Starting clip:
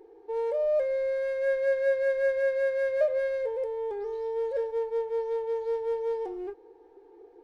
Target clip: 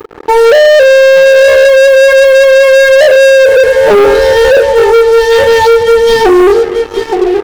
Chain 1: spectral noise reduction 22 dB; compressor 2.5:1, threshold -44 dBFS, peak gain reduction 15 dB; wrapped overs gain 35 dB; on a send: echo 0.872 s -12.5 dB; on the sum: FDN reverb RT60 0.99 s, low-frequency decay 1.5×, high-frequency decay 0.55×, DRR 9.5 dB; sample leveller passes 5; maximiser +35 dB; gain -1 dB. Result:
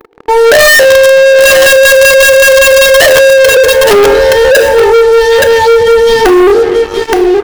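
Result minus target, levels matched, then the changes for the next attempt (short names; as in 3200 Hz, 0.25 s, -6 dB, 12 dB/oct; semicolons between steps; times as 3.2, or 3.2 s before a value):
compressor: peak gain reduction -5.5 dB
change: compressor 2.5:1, threshold -53 dBFS, peak gain reduction 20.5 dB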